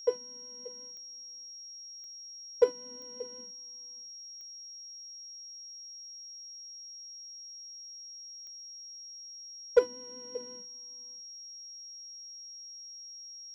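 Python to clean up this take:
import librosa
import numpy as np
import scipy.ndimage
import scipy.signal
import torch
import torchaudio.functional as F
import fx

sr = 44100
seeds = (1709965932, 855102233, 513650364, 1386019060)

y = fx.fix_declip(x, sr, threshold_db=-12.5)
y = fx.fix_declick_ar(y, sr, threshold=10.0)
y = fx.notch(y, sr, hz=5600.0, q=30.0)
y = fx.fix_echo_inverse(y, sr, delay_ms=581, level_db=-19.0)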